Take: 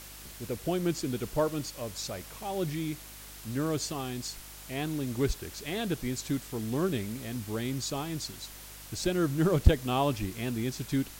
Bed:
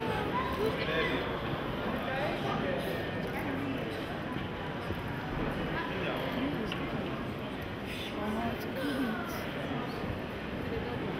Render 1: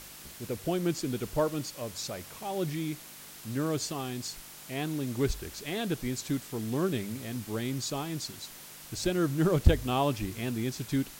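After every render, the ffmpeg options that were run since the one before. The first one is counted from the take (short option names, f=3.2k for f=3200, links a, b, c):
-af "bandreject=f=50:t=h:w=4,bandreject=f=100:t=h:w=4"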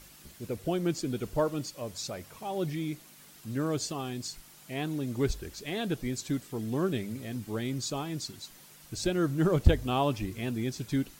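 -af "afftdn=nr=8:nf=-48"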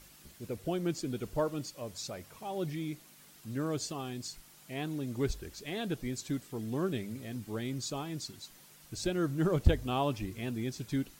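-af "volume=-3.5dB"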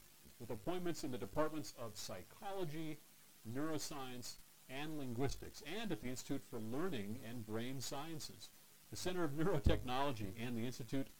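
-af "aeval=exprs='if(lt(val(0),0),0.251*val(0),val(0))':c=same,flanger=delay=8.5:depth=1.7:regen=68:speed=0.38:shape=triangular"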